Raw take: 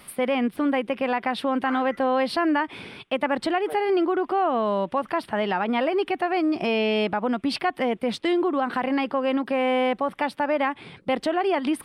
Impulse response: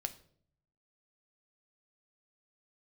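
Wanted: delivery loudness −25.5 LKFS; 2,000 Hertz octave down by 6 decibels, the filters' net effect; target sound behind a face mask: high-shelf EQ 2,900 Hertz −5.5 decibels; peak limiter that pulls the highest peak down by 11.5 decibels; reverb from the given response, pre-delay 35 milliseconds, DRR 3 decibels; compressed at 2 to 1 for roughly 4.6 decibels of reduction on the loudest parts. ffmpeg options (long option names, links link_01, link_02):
-filter_complex "[0:a]equalizer=frequency=2000:width_type=o:gain=-5.5,acompressor=threshold=-28dB:ratio=2,alimiter=level_in=4.5dB:limit=-24dB:level=0:latency=1,volume=-4.5dB,asplit=2[link_01][link_02];[1:a]atrim=start_sample=2205,adelay=35[link_03];[link_02][link_03]afir=irnorm=-1:irlink=0,volume=-2.5dB[link_04];[link_01][link_04]amix=inputs=2:normalize=0,highshelf=frequency=2900:gain=-5.5,volume=9.5dB"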